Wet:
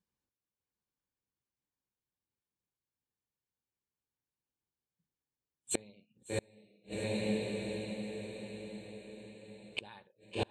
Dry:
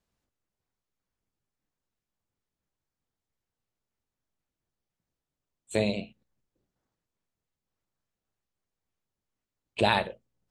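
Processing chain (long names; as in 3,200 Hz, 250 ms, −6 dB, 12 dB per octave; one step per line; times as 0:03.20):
notch comb filter 660 Hz
feedback delay with all-pass diffusion 740 ms, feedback 49%, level −5 dB
gate with flip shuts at −30 dBFS, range −36 dB
noise reduction from a noise print of the clip's start 17 dB
level +8.5 dB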